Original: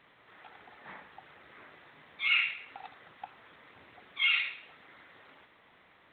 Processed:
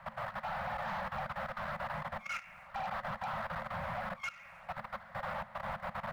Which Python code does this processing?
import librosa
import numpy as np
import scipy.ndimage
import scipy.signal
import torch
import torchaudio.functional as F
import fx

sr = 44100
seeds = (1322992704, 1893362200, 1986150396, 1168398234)

y = x + 0.5 * 10.0 ** (-31.5 / 20.0) * np.sign(x)
y = scipy.signal.sosfilt(scipy.signal.butter(4, 1400.0, 'lowpass', fs=sr, output='sos'), y)
y = fx.leveller(y, sr, passes=3)
y = fx.level_steps(y, sr, step_db=16)
y = scipy.signal.sosfilt(scipy.signal.cheby1(5, 1.0, [220.0, 530.0], 'bandstop', fs=sr, output='sos'), y)
y = y * 10.0 ** (-4.5 / 20.0)